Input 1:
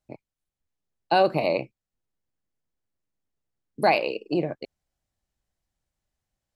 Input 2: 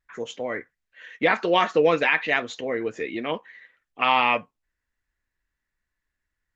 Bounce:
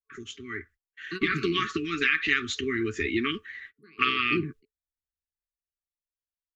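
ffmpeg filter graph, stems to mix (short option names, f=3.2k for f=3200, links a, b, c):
-filter_complex "[0:a]highshelf=f=3.5k:g=-12,volume=-9dB[a];[1:a]lowshelf=f=110:t=q:w=3:g=9,agate=range=-36dB:threshold=-51dB:ratio=16:detection=peak,acompressor=threshold=-21dB:ratio=16,volume=-2dB,asplit=2[b][c];[c]apad=whole_len=289084[d];[a][d]sidechaingate=range=-26dB:threshold=-46dB:ratio=16:detection=peak[e];[e][b]amix=inputs=2:normalize=0,acrossover=split=260|3000[f][g][h];[g]acompressor=threshold=-34dB:ratio=1.5[i];[f][i][h]amix=inputs=3:normalize=0,afftfilt=real='re*(1-between(b*sr/4096,440,1100))':imag='im*(1-between(b*sr/4096,440,1100))':win_size=4096:overlap=0.75,dynaudnorm=f=200:g=11:m=8dB"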